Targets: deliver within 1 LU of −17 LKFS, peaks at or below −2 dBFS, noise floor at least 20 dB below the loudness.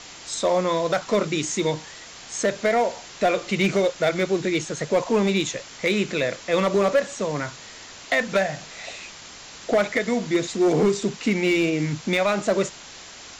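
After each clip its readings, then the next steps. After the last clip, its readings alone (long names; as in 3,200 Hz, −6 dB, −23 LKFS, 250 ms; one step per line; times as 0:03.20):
share of clipped samples 0.8%; peaks flattened at −13.5 dBFS; background noise floor −42 dBFS; target noise floor −44 dBFS; integrated loudness −23.5 LKFS; sample peak −13.5 dBFS; target loudness −17.0 LKFS
→ clipped peaks rebuilt −13.5 dBFS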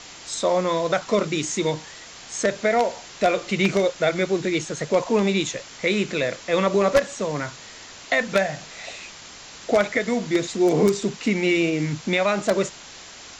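share of clipped samples 0.0%; background noise floor −42 dBFS; target noise floor −43 dBFS
→ broadband denoise 6 dB, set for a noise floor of −42 dBFS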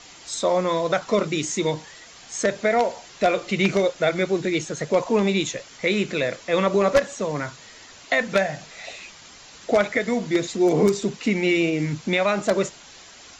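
background noise floor −46 dBFS; integrated loudness −23.0 LKFS; sample peak −4.5 dBFS; target loudness −17.0 LKFS
→ level +6 dB
brickwall limiter −2 dBFS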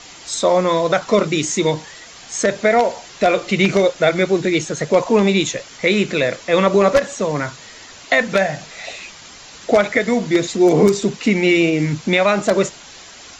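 integrated loudness −17.0 LKFS; sample peak −2.0 dBFS; background noise floor −40 dBFS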